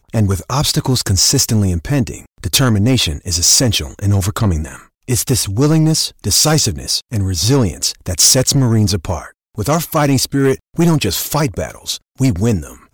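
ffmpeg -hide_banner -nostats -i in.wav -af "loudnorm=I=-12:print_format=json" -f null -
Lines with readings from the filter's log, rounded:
"input_i" : "-14.8",
"input_tp" : "-1.4",
"input_lra" : "3.2",
"input_thresh" : "-25.0",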